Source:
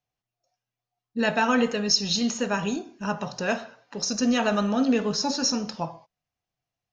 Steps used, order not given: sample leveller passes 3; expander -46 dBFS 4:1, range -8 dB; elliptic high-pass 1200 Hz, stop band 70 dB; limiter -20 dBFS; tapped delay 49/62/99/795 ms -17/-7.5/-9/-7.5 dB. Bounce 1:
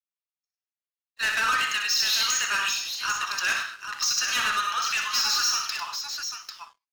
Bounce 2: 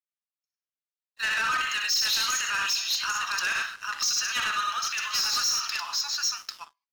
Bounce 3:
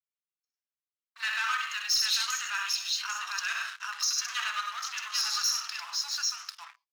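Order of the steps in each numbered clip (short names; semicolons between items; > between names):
elliptic high-pass > limiter > sample leveller > tapped delay > expander; tapped delay > limiter > elliptic high-pass > sample leveller > expander; tapped delay > sample leveller > limiter > expander > elliptic high-pass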